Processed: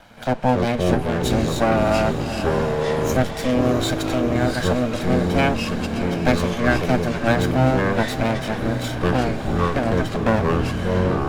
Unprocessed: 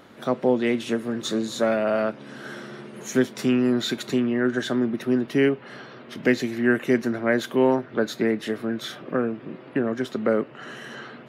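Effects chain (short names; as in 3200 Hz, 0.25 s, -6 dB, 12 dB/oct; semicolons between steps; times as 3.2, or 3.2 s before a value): minimum comb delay 1.3 ms; echoes that change speed 0.169 s, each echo -6 st, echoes 3; diffused feedback echo 0.665 s, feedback 63%, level -11.5 dB; gain +3.5 dB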